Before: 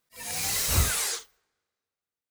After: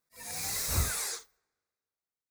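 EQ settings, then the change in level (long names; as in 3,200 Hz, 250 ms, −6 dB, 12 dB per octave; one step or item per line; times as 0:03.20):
parametric band 3,000 Hz −13.5 dB 0.26 octaves
−5.5 dB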